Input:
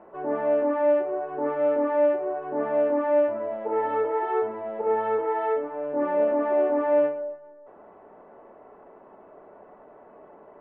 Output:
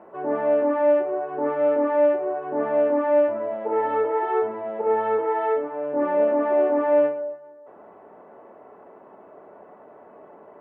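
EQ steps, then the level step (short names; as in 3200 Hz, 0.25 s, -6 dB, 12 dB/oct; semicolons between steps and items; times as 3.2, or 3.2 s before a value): HPF 87 Hz; +2.5 dB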